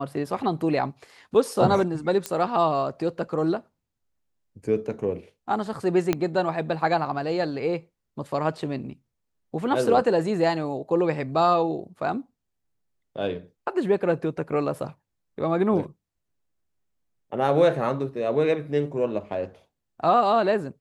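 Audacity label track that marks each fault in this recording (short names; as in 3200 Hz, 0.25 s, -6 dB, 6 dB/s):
2.260000	2.260000	pop -12 dBFS
6.130000	6.130000	pop -9 dBFS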